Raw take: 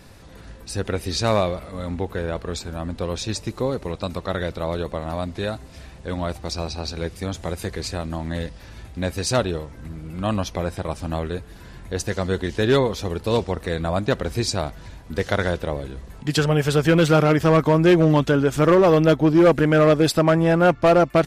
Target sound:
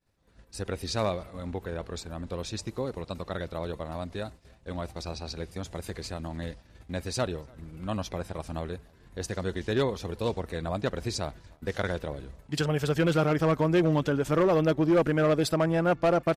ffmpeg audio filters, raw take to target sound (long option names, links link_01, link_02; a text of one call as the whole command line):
ffmpeg -i in.wav -filter_complex "[0:a]agate=range=-33dB:threshold=-33dB:ratio=3:detection=peak,asplit=2[link_01][link_02];[link_02]adelay=384.8,volume=-28dB,highshelf=frequency=4000:gain=-8.66[link_03];[link_01][link_03]amix=inputs=2:normalize=0,atempo=1.3,volume=-8dB" out.wav